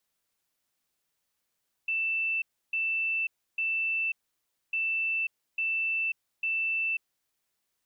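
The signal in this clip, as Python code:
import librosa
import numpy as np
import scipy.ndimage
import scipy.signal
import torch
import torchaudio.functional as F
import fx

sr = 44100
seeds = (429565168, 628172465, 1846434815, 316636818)

y = fx.beep_pattern(sr, wave='sine', hz=2660.0, on_s=0.54, off_s=0.31, beeps=3, pause_s=0.61, groups=2, level_db=-26.0)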